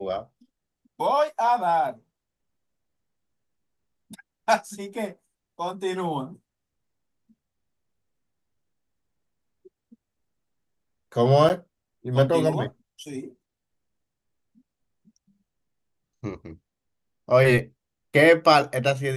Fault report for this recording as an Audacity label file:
11.490000	11.500000	drop-out 8.7 ms

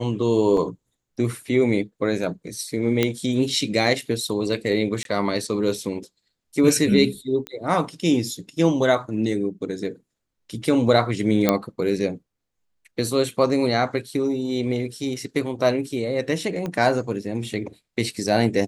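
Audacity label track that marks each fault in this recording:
0.570000	0.570000	drop-out 2.6 ms
3.030000	3.030000	click −6 dBFS
5.030000	5.050000	drop-out 22 ms
7.470000	7.470000	click −16 dBFS
11.490000	11.490000	click −3 dBFS
16.660000	16.660000	click −16 dBFS

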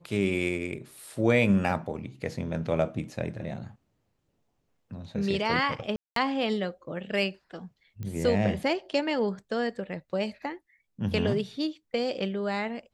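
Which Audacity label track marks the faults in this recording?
5.960000	6.160000	drop-out 203 ms
8.030000	8.030000	click −25 dBFS

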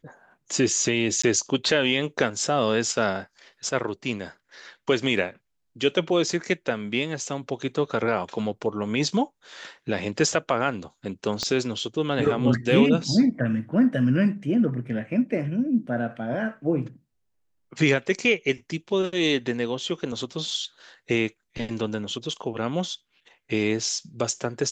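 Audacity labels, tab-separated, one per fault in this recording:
1.220000	1.240000	drop-out 15 ms
11.430000	11.430000	click −13 dBFS

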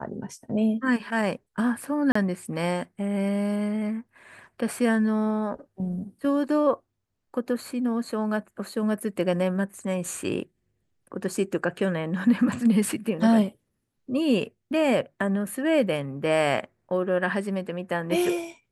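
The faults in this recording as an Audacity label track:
2.120000	2.150000	drop-out 34 ms

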